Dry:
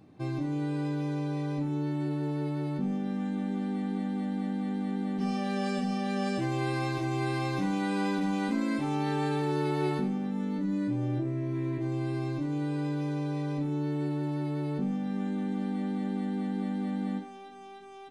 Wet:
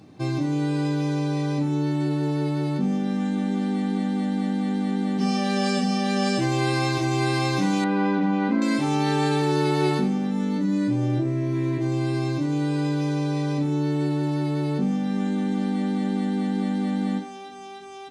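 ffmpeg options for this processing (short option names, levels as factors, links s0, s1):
-filter_complex "[0:a]asettb=1/sr,asplit=3[s0][s1][s2];[s0]atrim=end=7.844[s3];[s1]atrim=start=7.84:end=8.62,asetpts=PTS-STARTPTS,afade=t=in:d=0.004:c=qsin,afade=t=out:st=0.776:d=0.004:c=qsin,lowpass=1900[s4];[s2]atrim=start=8.616[s5];[s3][s4]acrossfade=d=0.004:c1=hsin:c2=qsin[s6];[s6][s5]acrossfade=d=0.004:c1=qsin:c2=hsin,highpass=48,equalizer=f=5800:w=0.83:g=7.5,volume=2.24"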